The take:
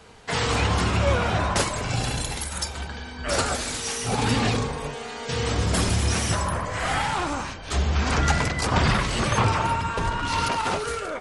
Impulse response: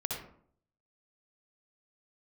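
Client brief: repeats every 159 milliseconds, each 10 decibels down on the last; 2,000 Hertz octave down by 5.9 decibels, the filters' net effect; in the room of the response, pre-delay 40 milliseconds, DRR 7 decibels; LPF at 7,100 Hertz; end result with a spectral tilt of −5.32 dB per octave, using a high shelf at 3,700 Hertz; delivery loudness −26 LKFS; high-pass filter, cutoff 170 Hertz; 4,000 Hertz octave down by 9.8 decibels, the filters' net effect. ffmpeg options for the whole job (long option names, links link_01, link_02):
-filter_complex "[0:a]highpass=170,lowpass=7100,equalizer=frequency=2000:width_type=o:gain=-4.5,highshelf=frequency=3700:gain=-7.5,equalizer=frequency=4000:width_type=o:gain=-6,aecho=1:1:159|318|477|636:0.316|0.101|0.0324|0.0104,asplit=2[link_01][link_02];[1:a]atrim=start_sample=2205,adelay=40[link_03];[link_02][link_03]afir=irnorm=-1:irlink=0,volume=-10dB[link_04];[link_01][link_04]amix=inputs=2:normalize=0,volume=1.5dB"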